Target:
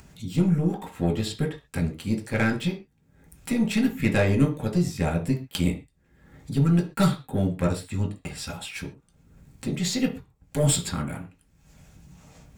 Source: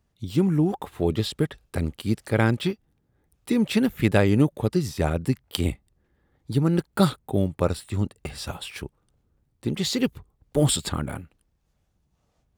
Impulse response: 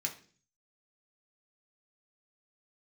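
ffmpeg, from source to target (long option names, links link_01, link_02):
-filter_complex "[0:a]acompressor=mode=upward:threshold=-29dB:ratio=2.5,aeval=exprs='0.596*(cos(1*acos(clip(val(0)/0.596,-1,1)))-cos(1*PI/2))+0.0531*(cos(6*acos(clip(val(0)/0.596,-1,1)))-cos(6*PI/2))':channel_layout=same[link_01];[1:a]atrim=start_sample=2205,afade=type=out:start_time=0.19:duration=0.01,atrim=end_sample=8820[link_02];[link_01][link_02]afir=irnorm=-1:irlink=0,volume=-3dB"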